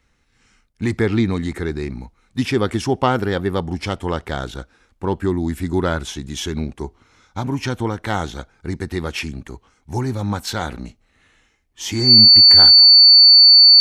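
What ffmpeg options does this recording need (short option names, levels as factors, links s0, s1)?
-af "bandreject=f=4500:w=30"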